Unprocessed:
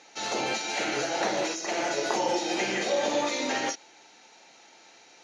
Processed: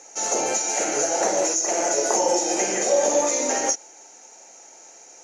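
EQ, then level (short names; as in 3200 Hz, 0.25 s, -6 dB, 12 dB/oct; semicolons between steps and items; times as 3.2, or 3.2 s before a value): HPF 150 Hz 6 dB/oct; bell 550 Hz +8 dB 1.4 oct; resonant high shelf 5200 Hz +10.5 dB, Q 3; 0.0 dB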